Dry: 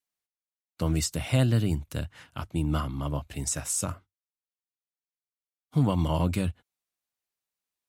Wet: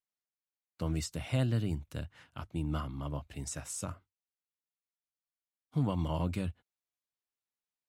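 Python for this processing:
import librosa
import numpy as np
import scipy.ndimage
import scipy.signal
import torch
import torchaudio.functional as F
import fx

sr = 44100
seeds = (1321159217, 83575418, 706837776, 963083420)

y = fx.high_shelf(x, sr, hz=7000.0, db=-7.5)
y = y * 10.0 ** (-7.0 / 20.0)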